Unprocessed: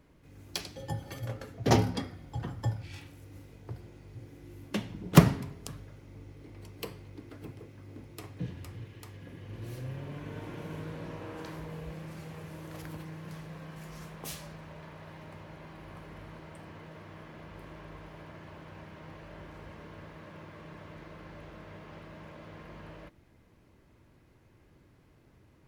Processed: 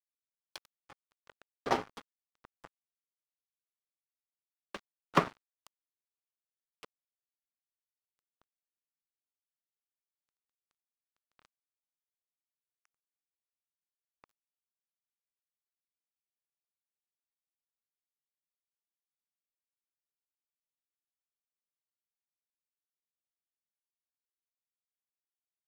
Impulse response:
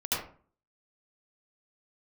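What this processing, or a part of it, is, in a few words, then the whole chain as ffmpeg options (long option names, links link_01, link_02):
pocket radio on a weak battery: -af "highpass=340,lowpass=3900,aeval=exprs='sgn(val(0))*max(abs(val(0))-0.0178,0)':channel_layout=same,equalizer=frequency=1200:width_type=o:width=0.77:gain=7,volume=-3dB"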